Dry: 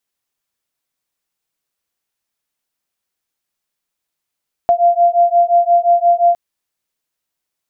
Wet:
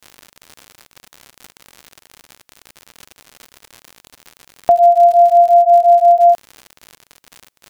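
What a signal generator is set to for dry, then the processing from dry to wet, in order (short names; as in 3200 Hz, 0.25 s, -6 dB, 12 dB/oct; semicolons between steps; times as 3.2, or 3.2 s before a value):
beating tones 690 Hz, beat 5.7 Hz, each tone -12 dBFS 1.66 s
in parallel at +1 dB: limiter -16 dBFS; on the sum: crackle 94/s -23 dBFS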